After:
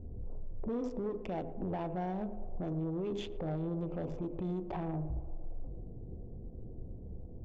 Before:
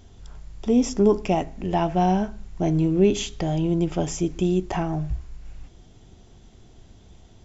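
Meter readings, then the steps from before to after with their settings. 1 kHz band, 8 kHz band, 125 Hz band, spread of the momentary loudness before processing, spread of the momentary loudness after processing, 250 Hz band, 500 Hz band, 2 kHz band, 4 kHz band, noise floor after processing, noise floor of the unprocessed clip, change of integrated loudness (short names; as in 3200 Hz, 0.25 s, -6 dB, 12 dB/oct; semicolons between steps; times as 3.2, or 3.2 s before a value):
-15.5 dB, n/a, -12.5 dB, 9 LU, 12 LU, -15.0 dB, -14.5 dB, -16.0 dB, -18.0 dB, -46 dBFS, -51 dBFS, -16.0 dB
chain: Wiener smoothing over 25 samples; LPF 6600 Hz; notches 50/100/150/200/250/300/350/400/450/500 Hz; low-pass opened by the level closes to 360 Hz, open at -19 dBFS; tone controls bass +1 dB, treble -12 dB; compressor 4:1, threshold -37 dBFS, peak gain reduction 20.5 dB; limiter -33 dBFS, peak gain reduction 8.5 dB; small resonant body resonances 500/3500 Hz, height 11 dB; soft clip -34.5 dBFS, distortion -18 dB; narrowing echo 0.114 s, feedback 80%, band-pass 510 Hz, level -12.5 dB; gain +5 dB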